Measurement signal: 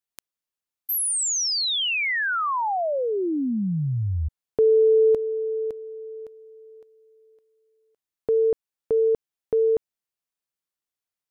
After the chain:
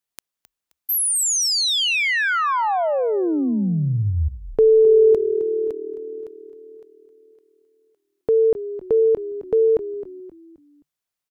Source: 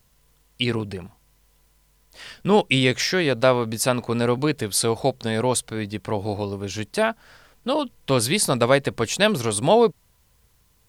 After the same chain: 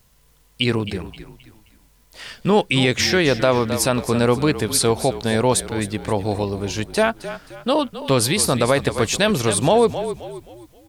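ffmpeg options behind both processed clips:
-filter_complex "[0:a]asplit=2[a][b];[b]asplit=4[c][d][e][f];[c]adelay=263,afreqshift=-39,volume=-13.5dB[g];[d]adelay=526,afreqshift=-78,volume=-21.9dB[h];[e]adelay=789,afreqshift=-117,volume=-30.3dB[i];[f]adelay=1052,afreqshift=-156,volume=-38.7dB[j];[g][h][i][j]amix=inputs=4:normalize=0[k];[a][k]amix=inputs=2:normalize=0,alimiter=level_in=9.5dB:limit=-1dB:release=50:level=0:latency=1,volume=-5.5dB"

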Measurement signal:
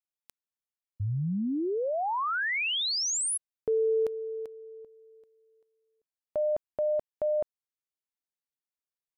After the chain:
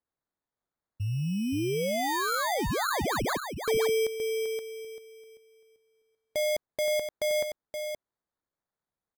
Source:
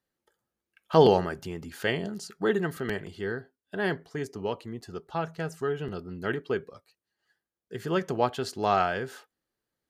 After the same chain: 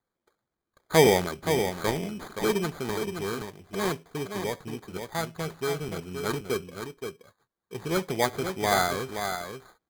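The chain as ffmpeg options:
-af "aecho=1:1:523:0.447,acrusher=samples=16:mix=1:aa=0.000001" -ar 48000 -c:a aac -b:a 128k

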